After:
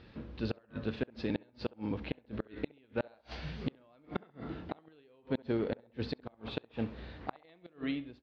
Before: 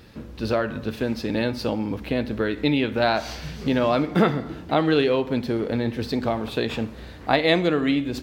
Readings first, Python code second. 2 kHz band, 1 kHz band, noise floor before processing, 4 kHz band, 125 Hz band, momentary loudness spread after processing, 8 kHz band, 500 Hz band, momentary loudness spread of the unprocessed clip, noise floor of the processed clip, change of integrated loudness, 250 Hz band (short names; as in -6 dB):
-18.5 dB, -20.5 dB, -40 dBFS, -18.5 dB, -13.5 dB, 9 LU, n/a, -17.0 dB, 9 LU, -66 dBFS, -16.0 dB, -14.5 dB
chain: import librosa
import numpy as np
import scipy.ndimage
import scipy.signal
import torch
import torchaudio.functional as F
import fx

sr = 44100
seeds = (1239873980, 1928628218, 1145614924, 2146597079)

y = fx.fade_out_tail(x, sr, length_s=0.66)
y = fx.gate_flip(y, sr, shuts_db=-13.0, range_db=-35)
y = scipy.signal.sosfilt(scipy.signal.butter(4, 4200.0, 'lowpass', fs=sr, output='sos'), y)
y = fx.echo_banded(y, sr, ms=67, feedback_pct=46, hz=720.0, wet_db=-20)
y = F.gain(torch.from_numpy(y), -7.0).numpy()